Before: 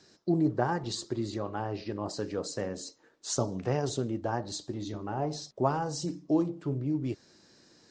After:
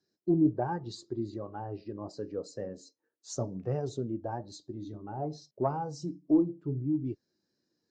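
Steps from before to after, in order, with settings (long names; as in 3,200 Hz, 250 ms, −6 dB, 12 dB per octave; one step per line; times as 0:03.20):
one-sided soft clipper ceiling −16 dBFS
every bin expanded away from the loudest bin 1.5 to 1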